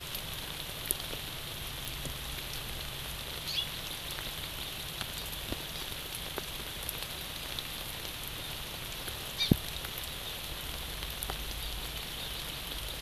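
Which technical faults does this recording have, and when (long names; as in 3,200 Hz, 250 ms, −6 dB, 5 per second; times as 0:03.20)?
0:01.85: click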